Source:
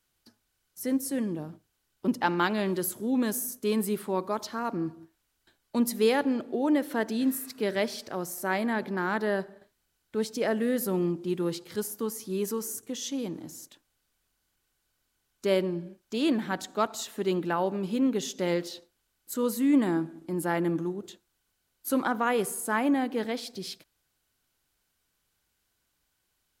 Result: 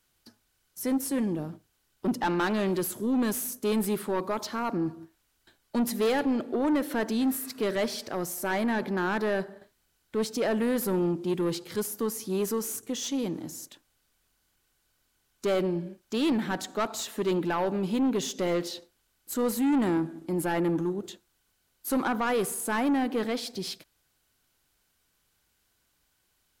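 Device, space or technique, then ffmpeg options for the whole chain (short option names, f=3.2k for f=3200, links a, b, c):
saturation between pre-emphasis and de-emphasis: -af "highshelf=f=3.3k:g=9,asoftclip=type=tanh:threshold=-25dB,highshelf=f=3.3k:g=-9,volume=4dB"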